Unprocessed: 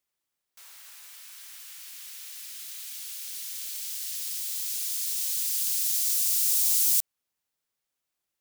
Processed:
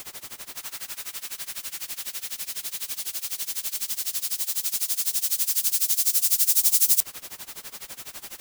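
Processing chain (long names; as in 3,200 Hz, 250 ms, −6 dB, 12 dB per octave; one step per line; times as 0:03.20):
converter with a step at zero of −35 dBFS
amplitude tremolo 12 Hz, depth 92%
level +6 dB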